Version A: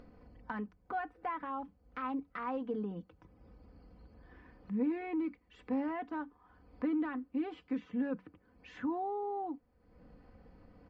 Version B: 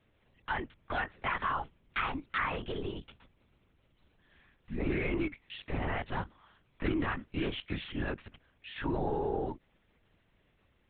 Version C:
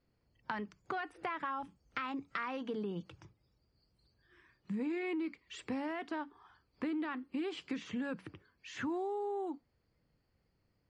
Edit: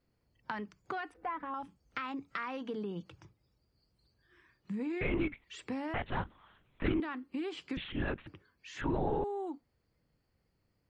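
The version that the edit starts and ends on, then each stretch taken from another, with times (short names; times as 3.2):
C
1.14–1.54 from A
5.01–5.44 from B
5.94–7 from B
7.77–8.27 from B
8.81–9.24 from B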